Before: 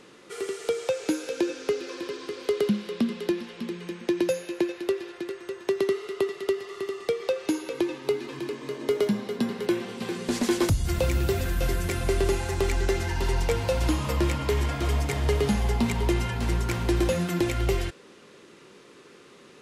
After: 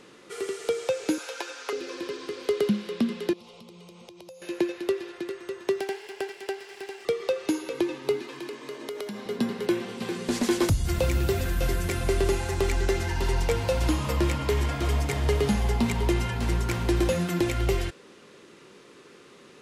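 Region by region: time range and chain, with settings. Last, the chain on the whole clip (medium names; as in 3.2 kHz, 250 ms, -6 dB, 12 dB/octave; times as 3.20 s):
1.18–1.73 s: resonant high-pass 900 Hz, resonance Q 1.7 + comb 7.1 ms, depth 45%
3.33–4.42 s: treble shelf 9.6 kHz -4.5 dB + static phaser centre 700 Hz, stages 4 + compression, threshold -44 dBFS
5.80–7.05 s: comb filter that takes the minimum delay 0.38 ms + high-pass 750 Hz 6 dB/octave
8.22–9.26 s: high-pass 430 Hz 6 dB/octave + compression, threshold -31 dBFS
whole clip: none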